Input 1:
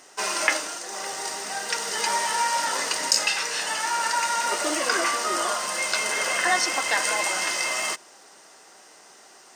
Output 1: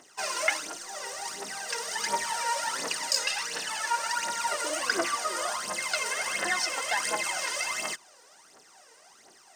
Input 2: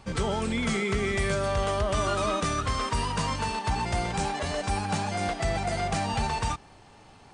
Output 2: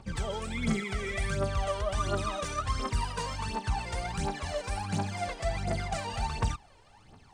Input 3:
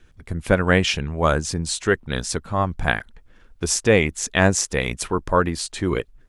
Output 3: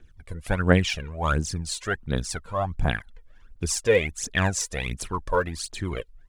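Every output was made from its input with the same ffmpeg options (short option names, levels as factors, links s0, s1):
-af "aphaser=in_gain=1:out_gain=1:delay=2.2:decay=0.69:speed=1.4:type=triangular,volume=0.398"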